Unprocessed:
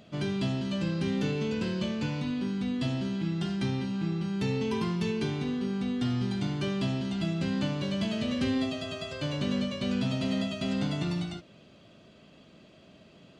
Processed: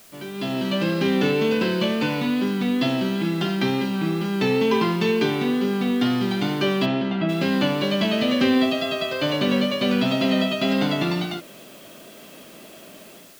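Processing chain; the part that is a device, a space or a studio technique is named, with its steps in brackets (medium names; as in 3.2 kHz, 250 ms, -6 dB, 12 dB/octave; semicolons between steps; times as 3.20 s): dictaphone (band-pass 270–4200 Hz; level rider gain up to 16 dB; wow and flutter 26 cents; white noise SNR 27 dB); 6.85–7.28 s: low-pass 4 kHz -> 2 kHz 12 dB/octave; trim -3 dB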